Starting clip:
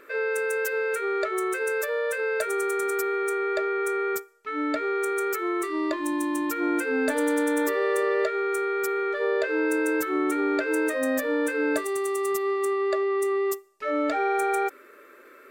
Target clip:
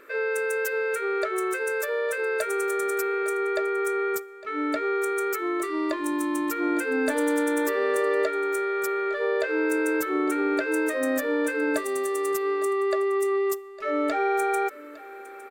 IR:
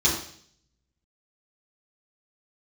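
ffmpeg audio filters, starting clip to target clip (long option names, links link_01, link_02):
-filter_complex "[0:a]asplit=2[link_01][link_02];[link_02]aecho=0:1:858:0.126[link_03];[link_01][link_03]amix=inputs=2:normalize=0"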